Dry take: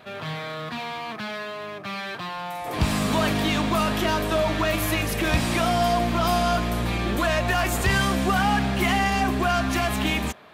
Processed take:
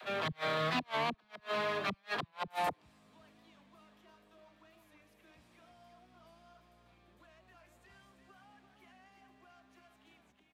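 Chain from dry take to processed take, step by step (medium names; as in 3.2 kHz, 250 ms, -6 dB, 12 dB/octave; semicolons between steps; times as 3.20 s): bass shelf 140 Hz -8.5 dB; on a send: feedback delay 341 ms, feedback 34%, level -8 dB; on the sum: inverted gate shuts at -22 dBFS, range -39 dB; treble shelf 8.3 kHz -7 dB; phase dispersion lows, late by 46 ms, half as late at 300 Hz; warped record 45 rpm, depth 100 cents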